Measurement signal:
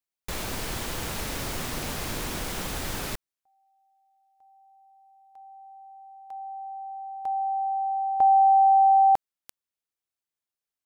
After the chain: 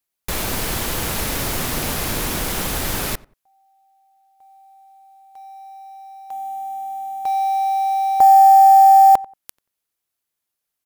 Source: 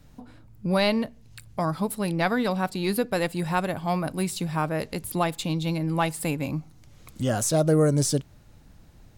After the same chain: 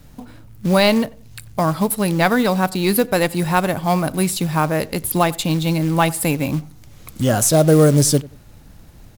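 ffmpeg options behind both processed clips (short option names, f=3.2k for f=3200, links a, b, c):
-filter_complex "[0:a]equalizer=f=12k:t=o:w=0.42:g=7,acrusher=bits=5:mode=log:mix=0:aa=0.000001,asplit=2[a][b];[b]adelay=91,lowpass=f=1.6k:p=1,volume=-20.5dB,asplit=2[c][d];[d]adelay=91,lowpass=f=1.6k:p=1,volume=0.25[e];[c][e]amix=inputs=2:normalize=0[f];[a][f]amix=inputs=2:normalize=0,volume=8dB"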